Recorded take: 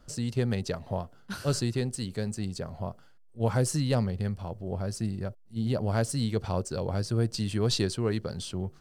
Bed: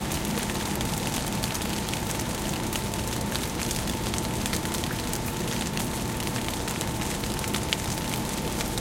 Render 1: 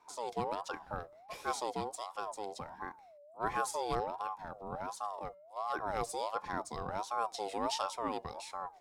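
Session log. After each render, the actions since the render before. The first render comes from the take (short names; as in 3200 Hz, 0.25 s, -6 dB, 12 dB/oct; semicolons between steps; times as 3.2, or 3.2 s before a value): resonator 760 Hz, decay 0.41 s, mix 50%; ring modulator with a swept carrier 770 Hz, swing 25%, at 1.4 Hz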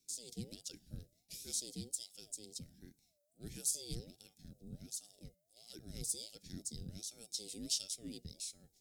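Chebyshev band-stop 200–4900 Hz, order 2; high shelf 5700 Hz +11.5 dB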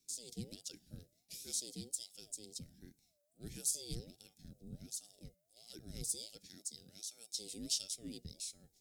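0.56–1.97 low shelf 86 Hz -10 dB; 6.46–7.35 HPF 840 Hz 6 dB/oct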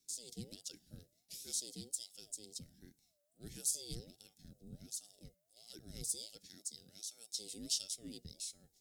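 low shelf 470 Hz -3 dB; notch 2400 Hz, Q 14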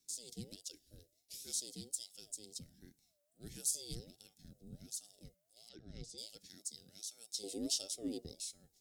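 0.56–1.34 fixed phaser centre 440 Hz, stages 4; 5.69–6.18 air absorption 160 m; 7.43–8.35 band shelf 560 Hz +12.5 dB 2.4 oct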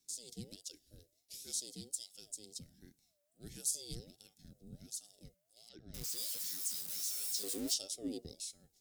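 5.94–7.74 switching spikes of -34.5 dBFS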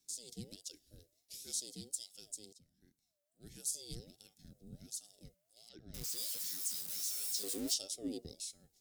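2.53–4.18 fade in, from -18 dB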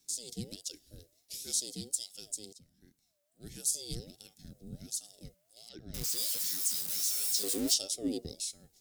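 gain +7 dB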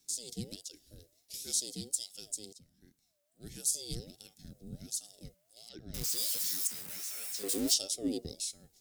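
0.66–1.34 compressor 1.5:1, threshold -51 dBFS; 6.67–7.49 resonant high shelf 3000 Hz -8 dB, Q 1.5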